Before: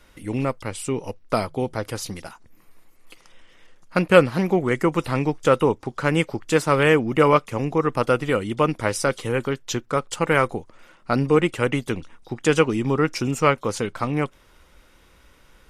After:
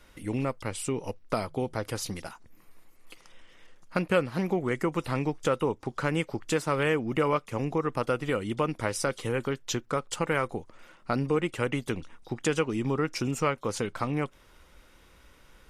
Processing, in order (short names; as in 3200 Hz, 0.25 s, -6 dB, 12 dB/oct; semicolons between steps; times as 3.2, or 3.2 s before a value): compressor 2:1, threshold -25 dBFS, peak gain reduction 10 dB; gain -2.5 dB